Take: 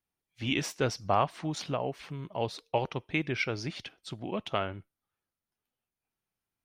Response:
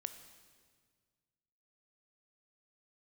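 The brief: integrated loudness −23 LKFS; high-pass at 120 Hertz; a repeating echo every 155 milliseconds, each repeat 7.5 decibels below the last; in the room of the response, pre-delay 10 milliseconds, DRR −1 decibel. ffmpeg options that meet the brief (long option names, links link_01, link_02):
-filter_complex "[0:a]highpass=120,aecho=1:1:155|310|465|620|775:0.422|0.177|0.0744|0.0312|0.0131,asplit=2[link_01][link_02];[1:a]atrim=start_sample=2205,adelay=10[link_03];[link_02][link_03]afir=irnorm=-1:irlink=0,volume=3.5dB[link_04];[link_01][link_04]amix=inputs=2:normalize=0,volume=6dB"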